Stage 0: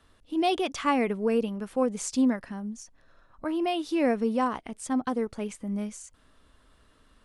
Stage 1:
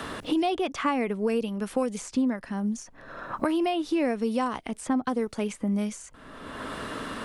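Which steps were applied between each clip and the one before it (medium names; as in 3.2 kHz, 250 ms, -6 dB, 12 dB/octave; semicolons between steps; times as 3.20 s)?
three bands compressed up and down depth 100%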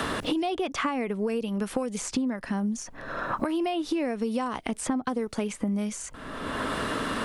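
compression, threshold -33 dBFS, peak gain reduction 12 dB; trim +7.5 dB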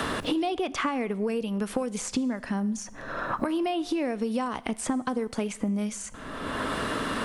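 Schroeder reverb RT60 0.9 s, combs from 25 ms, DRR 18.5 dB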